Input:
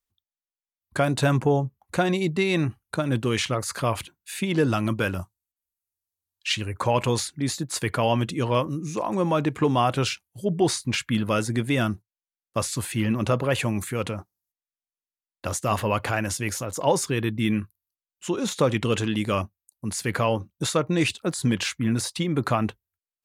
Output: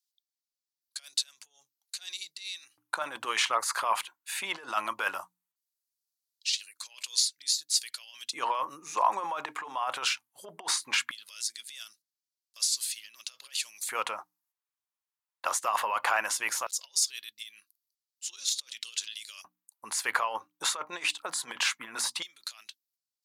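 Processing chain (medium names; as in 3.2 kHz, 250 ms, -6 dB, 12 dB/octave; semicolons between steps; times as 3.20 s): hum notches 60/120/180/240/300 Hz; compressor with a negative ratio -25 dBFS, ratio -0.5; LFO high-pass square 0.18 Hz 960–4600 Hz; trim -2.5 dB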